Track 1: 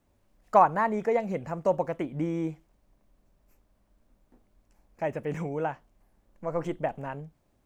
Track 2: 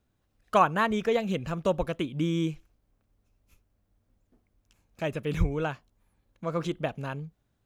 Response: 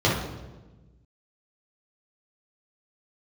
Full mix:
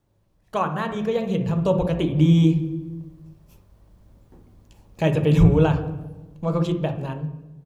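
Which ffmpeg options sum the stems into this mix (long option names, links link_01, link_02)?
-filter_complex "[0:a]acompressor=threshold=-34dB:ratio=6,volume=-3dB,asplit=2[link_01][link_02];[link_02]volume=-21dB[link_03];[1:a]adelay=0.5,volume=-4.5dB,asplit=2[link_04][link_05];[link_05]volume=-21dB[link_06];[2:a]atrim=start_sample=2205[link_07];[link_03][link_06]amix=inputs=2:normalize=0[link_08];[link_08][link_07]afir=irnorm=-1:irlink=0[link_09];[link_01][link_04][link_09]amix=inputs=3:normalize=0,dynaudnorm=framelen=520:gausssize=7:maxgain=11.5dB"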